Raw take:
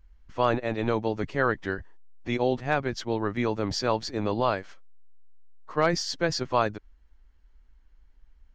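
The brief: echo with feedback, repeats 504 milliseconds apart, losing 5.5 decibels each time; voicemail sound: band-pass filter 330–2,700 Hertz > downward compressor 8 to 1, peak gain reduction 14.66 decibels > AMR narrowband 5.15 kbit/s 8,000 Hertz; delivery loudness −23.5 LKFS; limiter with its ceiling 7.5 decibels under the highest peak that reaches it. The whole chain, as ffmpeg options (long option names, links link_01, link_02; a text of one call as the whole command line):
ffmpeg -i in.wav -af "alimiter=limit=-17.5dB:level=0:latency=1,highpass=330,lowpass=2700,aecho=1:1:504|1008|1512|2016|2520|3024|3528:0.531|0.281|0.149|0.079|0.0419|0.0222|0.0118,acompressor=threshold=-39dB:ratio=8,volume=22dB" -ar 8000 -c:a libopencore_amrnb -b:a 5150 out.amr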